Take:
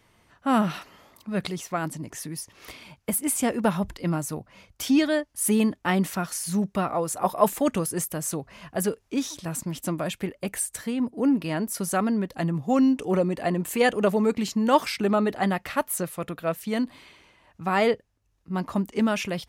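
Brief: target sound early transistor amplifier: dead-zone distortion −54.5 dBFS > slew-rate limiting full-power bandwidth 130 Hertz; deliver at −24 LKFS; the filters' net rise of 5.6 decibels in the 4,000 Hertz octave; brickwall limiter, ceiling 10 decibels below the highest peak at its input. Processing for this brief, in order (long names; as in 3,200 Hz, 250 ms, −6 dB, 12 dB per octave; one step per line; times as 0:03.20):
parametric band 4,000 Hz +7.5 dB
brickwall limiter −15.5 dBFS
dead-zone distortion −54.5 dBFS
slew-rate limiting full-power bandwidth 130 Hz
level +4 dB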